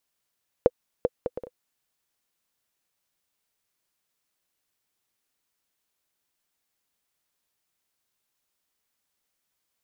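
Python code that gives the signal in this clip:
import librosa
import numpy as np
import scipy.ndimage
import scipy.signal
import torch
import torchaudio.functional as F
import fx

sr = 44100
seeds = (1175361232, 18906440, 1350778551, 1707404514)

y = fx.bouncing_ball(sr, first_gap_s=0.39, ratio=0.54, hz=497.0, decay_ms=39.0, level_db=-5.0)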